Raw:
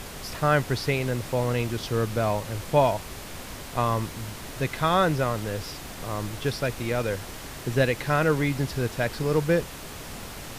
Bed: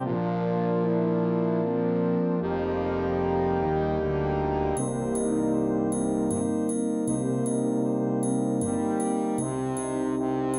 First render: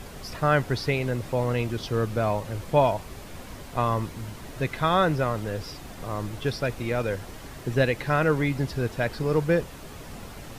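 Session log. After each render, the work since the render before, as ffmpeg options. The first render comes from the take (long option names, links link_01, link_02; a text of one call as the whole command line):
ffmpeg -i in.wav -af "afftdn=noise_reduction=7:noise_floor=-40" out.wav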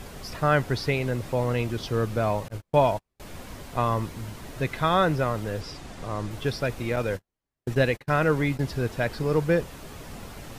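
ffmpeg -i in.wav -filter_complex "[0:a]asettb=1/sr,asplit=3[link_01][link_02][link_03];[link_01]atrim=end=2.484[link_04];[link_02]atrim=start=2.48:end=3.2,asetpts=PTS-STARTPTS,afade=type=in:duration=0.004:curve=qsin,afade=type=out:start_time=0.716:duration=0.004:curve=qsin,agate=range=-42dB:threshold=-31dB:ratio=16:release=100:detection=peak[link_05];[link_03]atrim=start=3.196[link_06];[link_04][link_05]acrossfade=duration=0.004:curve1=hsin:curve2=qsin[link_07];[link_07][link_06]acrossfade=duration=0.004:curve1=qsin:curve2=hsin,asettb=1/sr,asplit=3[link_08][link_09][link_10];[link_08]atrim=end=5.614[link_11];[link_09]atrim=start=5.61:end=6.31,asetpts=PTS-STARTPTS,afade=type=in:duration=0.004:curve=qsin,afade=type=out:start_time=0.696:duration=0.004:curve=qsin,lowpass=9100[link_12];[link_10]atrim=start=6.306[link_13];[link_11][link_12]acrossfade=duration=0.004:curve1=hsin:curve2=qsin[link_14];[link_14][link_13]acrossfade=duration=0.004:curve1=qsin:curve2=hsin,asettb=1/sr,asplit=3[link_15][link_16][link_17];[link_15]atrim=end=6.964[link_18];[link_16]atrim=start=6.96:end=8.62,asetpts=PTS-STARTPTS,afade=type=in:duration=0.004:curve=qsin,afade=type=out:start_time=1.656:duration=0.004:curve=qsin,agate=range=-48dB:threshold=-32dB:ratio=16:release=100:detection=peak[link_19];[link_17]atrim=start=8.616[link_20];[link_18][link_19]acrossfade=duration=0.004:curve1=hsin:curve2=qsin[link_21];[link_21][link_20]acrossfade=duration=0.004:curve1=qsin:curve2=hsin" out.wav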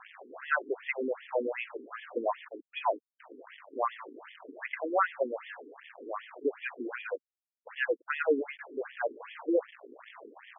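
ffmpeg -i in.wav -af "acrusher=bits=5:mix=0:aa=0.5,afftfilt=real='re*between(b*sr/1024,320*pow(2500/320,0.5+0.5*sin(2*PI*2.6*pts/sr))/1.41,320*pow(2500/320,0.5+0.5*sin(2*PI*2.6*pts/sr))*1.41)':imag='im*between(b*sr/1024,320*pow(2500/320,0.5+0.5*sin(2*PI*2.6*pts/sr))/1.41,320*pow(2500/320,0.5+0.5*sin(2*PI*2.6*pts/sr))*1.41)':win_size=1024:overlap=0.75" out.wav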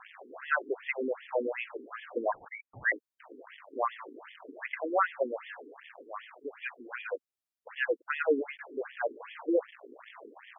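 ffmpeg -i in.wav -filter_complex "[0:a]asettb=1/sr,asplit=3[link_01][link_02][link_03];[link_01]atrim=end=2.324[link_04];[link_02]atrim=start=2.32:end=2.92,asetpts=PTS-STARTPTS,afade=type=in:duration=0.004:curve=qsin,afade=type=out:start_time=0.596:duration=0.004:curve=qsin,lowpass=frequency=2200:width_type=q:width=0.5098,lowpass=frequency=2200:width_type=q:width=0.6013,lowpass=frequency=2200:width_type=q:width=0.9,lowpass=frequency=2200:width_type=q:width=2.563,afreqshift=-2600[link_05];[link_03]atrim=start=2.916[link_06];[link_04][link_05]acrossfade=duration=0.004:curve1=hsin:curve2=qsin[link_07];[link_07][link_06]acrossfade=duration=0.004:curve1=qsin:curve2=hsin,asplit=3[link_08][link_09][link_10];[link_08]afade=type=out:start_time=6.01:duration=0.02[link_11];[link_09]equalizer=frequency=340:width=0.77:gain=-12,afade=type=in:start_time=6.01:duration=0.02,afade=type=out:start_time=6.9:duration=0.02[link_12];[link_10]afade=type=in:start_time=6.9:duration=0.02[link_13];[link_11][link_12][link_13]amix=inputs=3:normalize=0" out.wav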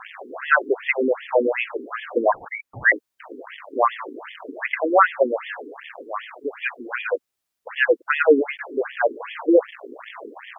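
ffmpeg -i in.wav -af "volume=12dB" out.wav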